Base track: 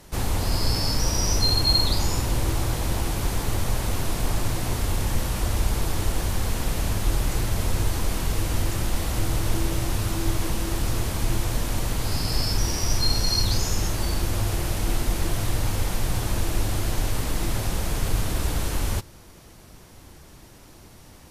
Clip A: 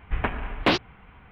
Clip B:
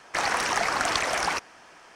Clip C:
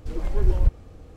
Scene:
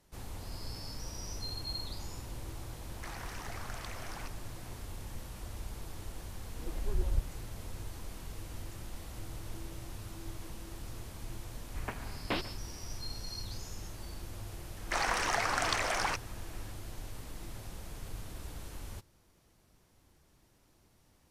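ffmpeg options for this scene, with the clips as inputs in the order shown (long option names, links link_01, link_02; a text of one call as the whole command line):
ffmpeg -i bed.wav -i cue0.wav -i cue1.wav -i cue2.wav -filter_complex "[2:a]asplit=2[link_01][link_02];[0:a]volume=-19dB[link_03];[link_01]acompressor=threshold=-50dB:ratio=2:attack=49:release=30:knee=1:detection=peak[link_04];[1:a]aecho=1:1:141:0.15[link_05];[link_04]atrim=end=1.95,asetpts=PTS-STARTPTS,volume=-10.5dB,afade=type=in:duration=0.004:curve=hsin,afade=type=out:start_time=1.946:duration=0.004:curve=hsin,adelay=2890[link_06];[3:a]atrim=end=1.16,asetpts=PTS-STARTPTS,volume=-12dB,afade=type=in:duration=0.004:curve=hsin,afade=type=out:start_time=1.156:duration=0.004:curve=hsin,adelay=6510[link_07];[link_05]atrim=end=1.31,asetpts=PTS-STARTPTS,volume=-13.5dB,afade=type=in:duration=0.004:curve=hsin,afade=type=out:start_time=1.306:duration=0.004:curve=hsin,adelay=11640[link_08];[link_02]atrim=end=1.95,asetpts=PTS-STARTPTS,volume=-6dB,afade=type=in:duration=0.004:curve=hsin,afade=type=out:start_time=1.946:duration=0.004:curve=hsin,adelay=14770[link_09];[link_03][link_06][link_07][link_08][link_09]amix=inputs=5:normalize=0" out.wav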